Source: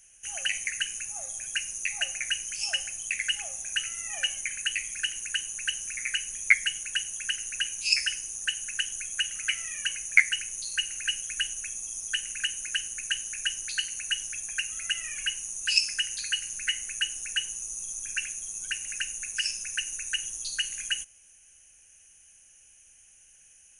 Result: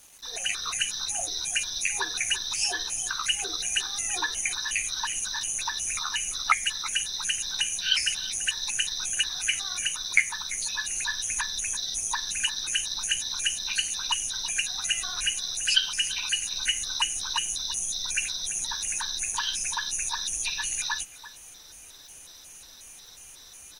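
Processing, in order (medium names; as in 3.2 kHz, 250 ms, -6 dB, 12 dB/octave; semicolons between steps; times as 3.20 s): pitch shift switched off and on -9 st, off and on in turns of 181 ms; in parallel at -0.5 dB: compression 8:1, threshold -40 dBFS, peak gain reduction 26.5 dB; on the sum: peaking EQ 1.5 kHz -8.5 dB 1.3 oct; small resonant body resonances 720/2400 Hz, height 12 dB, ringing for 80 ms; speakerphone echo 340 ms, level -15 dB; level rider gain up to 6.5 dB; bit crusher 8-bit; dynamic bell 590 Hz, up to -4 dB, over -51 dBFS, Q 2.5; trim -3 dB; AAC 48 kbps 48 kHz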